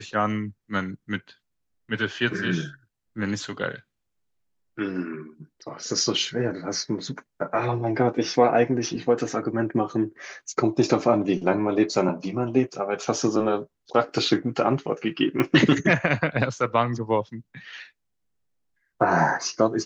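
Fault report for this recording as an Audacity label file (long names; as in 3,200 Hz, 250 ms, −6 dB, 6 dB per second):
15.400000	15.400000	click −11 dBFS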